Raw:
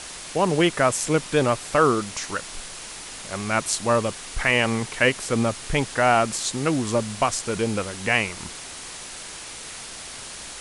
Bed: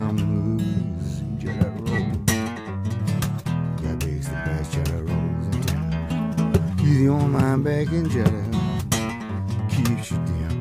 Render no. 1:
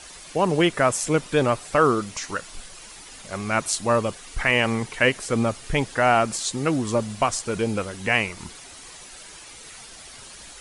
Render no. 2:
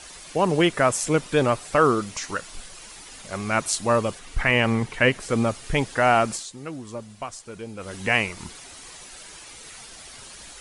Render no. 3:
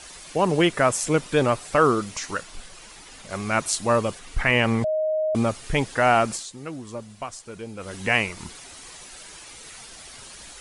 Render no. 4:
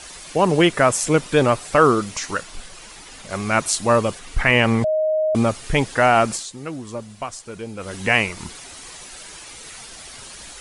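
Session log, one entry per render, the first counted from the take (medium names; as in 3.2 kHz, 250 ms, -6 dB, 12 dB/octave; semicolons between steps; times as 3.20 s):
noise reduction 9 dB, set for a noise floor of -38 dBFS
4.19–5.29 s: tone controls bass +4 dB, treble -5 dB; 6.31–7.94 s: dip -12 dB, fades 0.16 s
2.43–3.30 s: treble shelf 5.6 kHz -5.5 dB; 4.84–5.35 s: bleep 624 Hz -20.5 dBFS
trim +4 dB; peak limiter -3 dBFS, peak gain reduction 2 dB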